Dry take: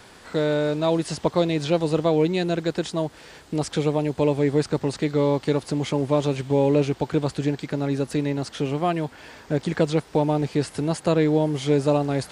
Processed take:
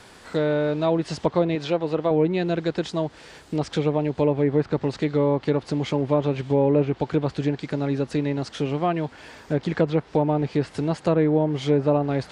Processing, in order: low-pass that closes with the level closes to 1.8 kHz, closed at -16 dBFS; 1.55–2.11 s: bass shelf 200 Hz -10 dB

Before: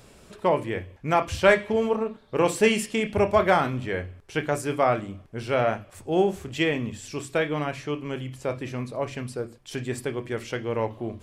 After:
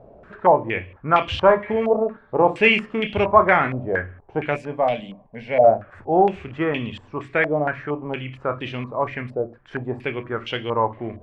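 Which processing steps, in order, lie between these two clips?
in parallel at -8 dB: hard clipper -18 dBFS, distortion -11 dB; 4.56–5.64 s: on the sum: static phaser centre 350 Hz, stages 6; step-sequenced low-pass 4.3 Hz 660–3100 Hz; trim -1.5 dB

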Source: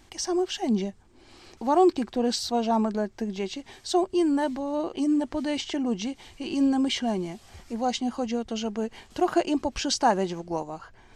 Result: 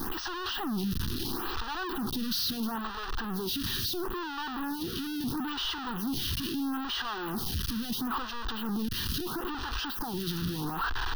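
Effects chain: one-bit comparator; static phaser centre 2.2 kHz, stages 6; lamp-driven phase shifter 0.75 Hz

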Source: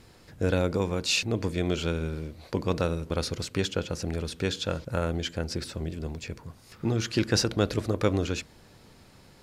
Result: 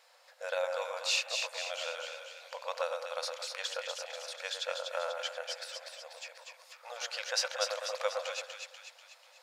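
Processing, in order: brick-wall FIR high-pass 490 Hz; peaking EQ 11 kHz -4 dB 0.7 oct; two-band feedback delay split 1.6 kHz, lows 111 ms, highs 244 ms, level -4.5 dB; trim -4 dB

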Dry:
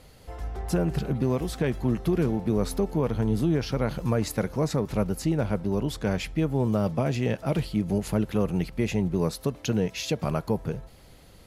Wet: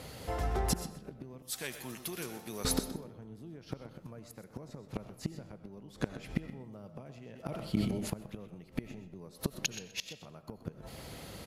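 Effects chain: high-pass 81 Hz 12 dB/octave; 1.42–2.65 s: pre-emphasis filter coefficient 0.97; in parallel at -2 dB: compression 6:1, threshold -38 dBFS, peak gain reduction 17.5 dB; on the sum: inverted gate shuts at -19 dBFS, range -27 dB; feedback delay 126 ms, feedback 17%, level -13 dB; on a send at -12 dB: reverberation RT60 0.70 s, pre-delay 50 ms; 7.14–8.10 s: on the sum: decay stretcher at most 33 dB/s; trim +2 dB

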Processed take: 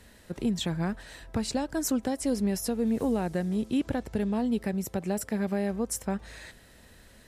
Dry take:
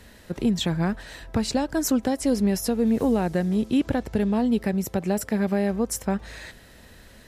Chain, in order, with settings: peaking EQ 8.9 kHz +4 dB 0.59 oct; trim -5.5 dB

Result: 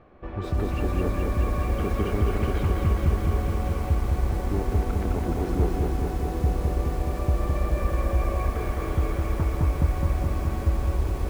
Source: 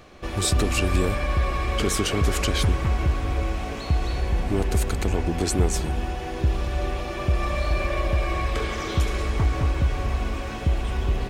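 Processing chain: low-pass 1.4 kHz 12 dB/octave; echo that smears into a reverb 1131 ms, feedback 45%, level -10 dB; bit-crushed delay 211 ms, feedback 80%, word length 7-bit, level -3.5 dB; trim -4.5 dB

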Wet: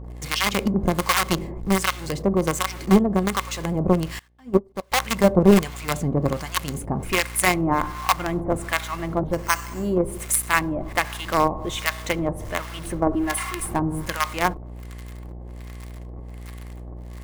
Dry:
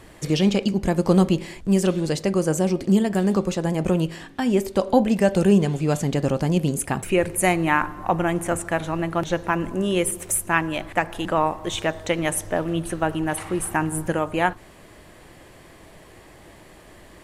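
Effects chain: 13.06–13.66 s: comb 2.9 ms, depth 83%; in parallel at -5 dB: companded quantiser 2-bit; on the sum: small resonant body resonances 1.1/2.1 kHz, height 9 dB, ringing for 35 ms; 9.27–9.96 s: careless resampling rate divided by 6×, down filtered, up hold; harmonic tremolo 1.3 Hz, depth 100%, crossover 890 Hz; mains buzz 60 Hz, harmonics 15, -35 dBFS -8 dB/octave; 4.19–4.92 s: upward expansion 2.5:1, over -26 dBFS; trim -1.5 dB

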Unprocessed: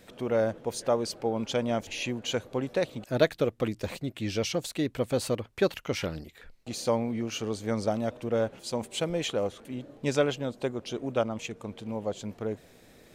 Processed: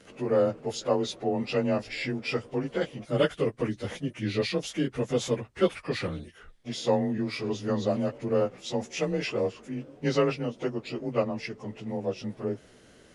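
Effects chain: frequency axis rescaled in octaves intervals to 92%; trim +3 dB

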